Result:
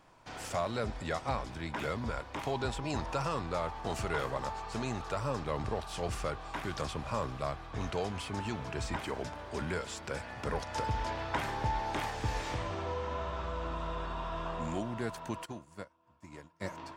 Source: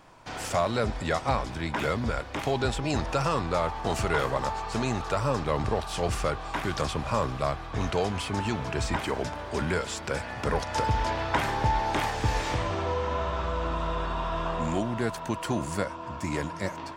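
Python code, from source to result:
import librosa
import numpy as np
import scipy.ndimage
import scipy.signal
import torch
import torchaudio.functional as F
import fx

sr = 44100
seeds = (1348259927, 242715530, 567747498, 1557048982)

y = fx.peak_eq(x, sr, hz=970.0, db=6.5, octaves=0.31, at=(1.96, 3.25))
y = fx.upward_expand(y, sr, threshold_db=-38.0, expansion=2.5, at=(15.44, 16.6), fade=0.02)
y = F.gain(torch.from_numpy(y), -7.5).numpy()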